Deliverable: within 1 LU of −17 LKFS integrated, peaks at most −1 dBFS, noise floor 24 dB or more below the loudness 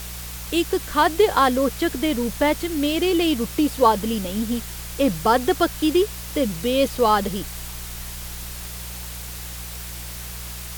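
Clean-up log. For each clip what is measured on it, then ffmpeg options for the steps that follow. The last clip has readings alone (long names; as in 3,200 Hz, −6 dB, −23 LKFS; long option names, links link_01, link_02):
mains hum 60 Hz; hum harmonics up to 180 Hz; level of the hum −35 dBFS; background noise floor −34 dBFS; target noise floor −47 dBFS; integrated loudness −22.5 LKFS; sample peak −4.5 dBFS; target loudness −17.0 LKFS
→ -af "bandreject=frequency=60:width_type=h:width=4,bandreject=frequency=120:width_type=h:width=4,bandreject=frequency=180:width_type=h:width=4"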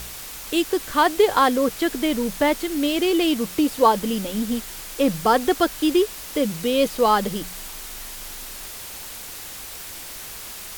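mains hum none found; background noise floor −36 dBFS; target noise floor −45 dBFS
→ -af "afftdn=noise_reduction=9:noise_floor=-36"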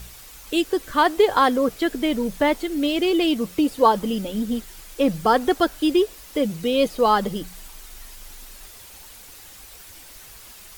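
background noise floor −44 dBFS; target noise floor −46 dBFS
→ -af "afftdn=noise_reduction=6:noise_floor=-44"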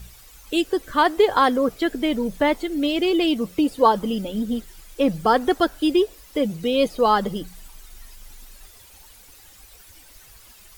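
background noise floor −49 dBFS; integrated loudness −21.5 LKFS; sample peak −4.5 dBFS; target loudness −17.0 LKFS
→ -af "volume=4.5dB,alimiter=limit=-1dB:level=0:latency=1"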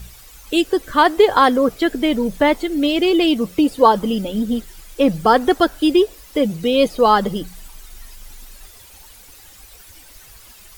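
integrated loudness −17.0 LKFS; sample peak −1.0 dBFS; background noise floor −44 dBFS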